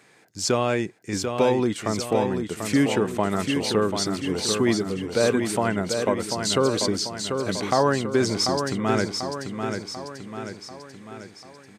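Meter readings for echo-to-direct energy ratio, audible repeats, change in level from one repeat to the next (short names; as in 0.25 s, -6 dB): -4.5 dB, 6, -5.5 dB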